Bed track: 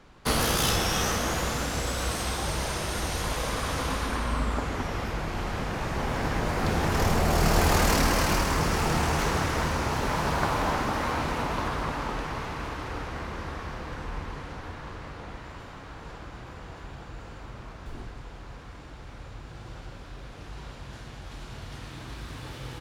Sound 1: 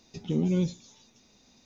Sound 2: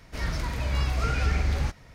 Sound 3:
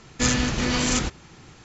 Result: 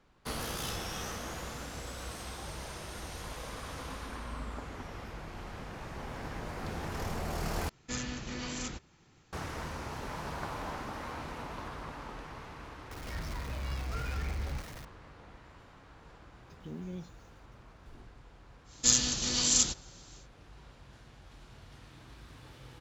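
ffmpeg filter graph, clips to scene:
ffmpeg -i bed.wav -i cue0.wav -i cue1.wav -i cue2.wav -filter_complex "[3:a]asplit=2[link_01][link_02];[0:a]volume=-12.5dB[link_03];[2:a]aeval=exprs='val(0)+0.5*0.0355*sgn(val(0))':channel_layout=same[link_04];[1:a]acrusher=bits=8:mix=0:aa=0.5[link_05];[link_02]aexciter=amount=6.3:drive=3.2:freq=3200[link_06];[link_03]asplit=2[link_07][link_08];[link_07]atrim=end=7.694[link_09];[link_01]atrim=end=1.64,asetpts=PTS-STARTPTS,volume=-15.5dB[link_10];[link_08]atrim=start=9.326[link_11];[link_04]atrim=end=1.94,asetpts=PTS-STARTPTS,volume=-12.5dB,afade=type=in:duration=0.004:curve=hsin,afade=type=out:start_time=1.936:duration=0.004:curve=hsin,adelay=12910[link_12];[link_05]atrim=end=1.65,asetpts=PTS-STARTPTS,volume=-16dB,afade=type=in:duration=0.004:curve=hsin,afade=type=out:start_time=1.646:duration=0.004:curve=hsin,adelay=721476S[link_13];[link_06]atrim=end=1.64,asetpts=PTS-STARTPTS,volume=-13.5dB,afade=type=in:duration=0.1,afade=type=out:start_time=1.54:duration=0.1,adelay=18640[link_14];[link_09][link_10]acrossfade=duration=0.004:curve1=hsin:curve2=hsin[link_15];[link_15][link_11]acrossfade=duration=0.004:curve1=hsin:curve2=hsin[link_16];[link_16][link_12][link_13][link_14]amix=inputs=4:normalize=0" out.wav

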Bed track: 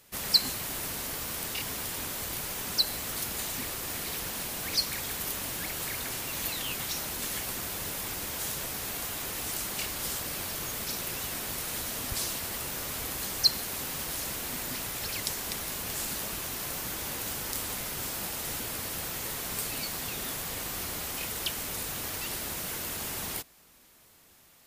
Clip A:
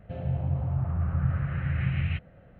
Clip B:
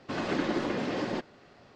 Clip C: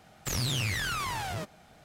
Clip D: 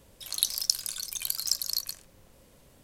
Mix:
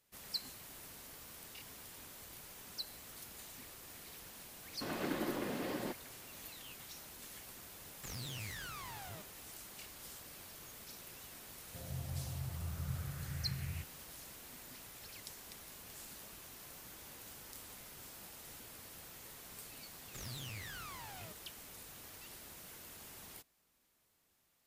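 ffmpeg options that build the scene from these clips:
ffmpeg -i bed.wav -i cue0.wav -i cue1.wav -i cue2.wav -filter_complex "[3:a]asplit=2[link_01][link_02];[0:a]volume=-17.5dB[link_03];[2:a]atrim=end=1.75,asetpts=PTS-STARTPTS,volume=-8.5dB,afade=type=in:duration=0.004:curve=hsin,afade=type=out:start_time=1.746:duration=0.004:curve=hsin,adelay=4720[link_04];[link_01]atrim=end=1.84,asetpts=PTS-STARTPTS,volume=-15dB,afade=type=in:duration=0.004:curve=hsin,afade=type=out:start_time=1.836:duration=0.004:curve=hsin,adelay=7770[link_05];[1:a]atrim=end=2.59,asetpts=PTS-STARTPTS,volume=-14.5dB,afade=type=in:duration=0.004:curve=hsin,afade=type=out:start_time=2.586:duration=0.004:curve=hsin,adelay=11650[link_06];[link_02]atrim=end=1.84,asetpts=PTS-STARTPTS,volume=-16.5dB,afade=type=in:duration=0.004:curve=hsin,afade=type=out:start_time=1.836:duration=0.004:curve=hsin,adelay=876708S[link_07];[link_03][link_04][link_05][link_06][link_07]amix=inputs=5:normalize=0" out.wav

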